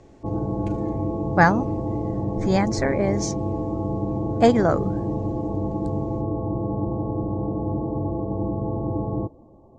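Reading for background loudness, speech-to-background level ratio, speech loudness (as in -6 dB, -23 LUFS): -27.0 LUFS, 5.0 dB, -22.0 LUFS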